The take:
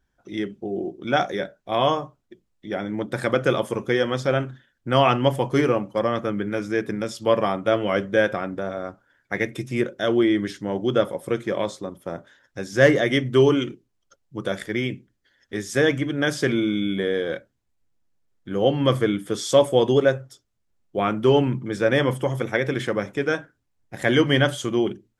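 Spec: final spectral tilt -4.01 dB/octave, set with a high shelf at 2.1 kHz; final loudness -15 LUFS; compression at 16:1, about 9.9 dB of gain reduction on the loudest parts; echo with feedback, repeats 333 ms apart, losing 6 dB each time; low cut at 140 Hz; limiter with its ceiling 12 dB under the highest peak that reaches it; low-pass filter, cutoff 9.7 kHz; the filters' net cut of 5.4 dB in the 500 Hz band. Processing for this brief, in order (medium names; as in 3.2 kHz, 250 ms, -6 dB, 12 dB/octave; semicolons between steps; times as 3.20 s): high-pass 140 Hz; low-pass 9.7 kHz; peaking EQ 500 Hz -7 dB; treble shelf 2.1 kHz +7 dB; compression 16:1, threshold -22 dBFS; peak limiter -21 dBFS; feedback delay 333 ms, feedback 50%, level -6 dB; trim +16.5 dB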